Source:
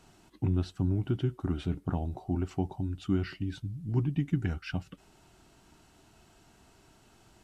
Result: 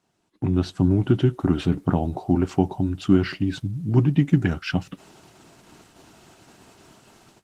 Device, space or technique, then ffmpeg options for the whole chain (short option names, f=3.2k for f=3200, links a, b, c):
video call: -af "highpass=120,dynaudnorm=f=320:g=3:m=12.5dB,agate=range=-11dB:threshold=-49dB:ratio=16:detection=peak" -ar 48000 -c:a libopus -b:a 16k